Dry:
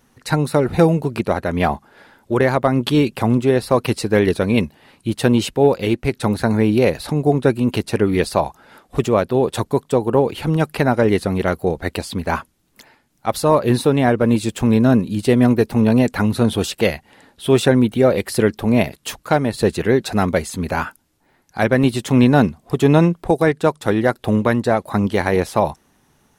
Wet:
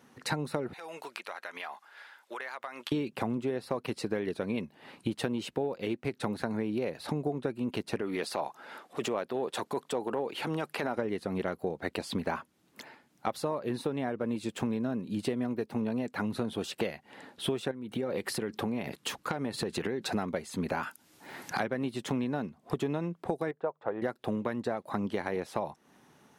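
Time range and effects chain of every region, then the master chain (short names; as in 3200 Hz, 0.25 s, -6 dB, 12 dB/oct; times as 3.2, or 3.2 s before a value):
0.73–2.92 HPF 1300 Hz + compressor 5:1, threshold -36 dBFS
8.01–10.97 HPF 480 Hz 6 dB/oct + transient shaper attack -9 dB, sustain +2 dB
17.71–20.11 notch 640 Hz, Q 7.8 + compressor 12:1, threshold -21 dBFS
20.83–21.6 high shelf 2300 Hz +11.5 dB + three-band squash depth 100%
23.51–24.02 LPF 1200 Hz + resonant low shelf 390 Hz -9 dB, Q 1.5
whole clip: HPF 160 Hz 12 dB/oct; compressor 16:1, threshold -28 dBFS; high shelf 5400 Hz -8.5 dB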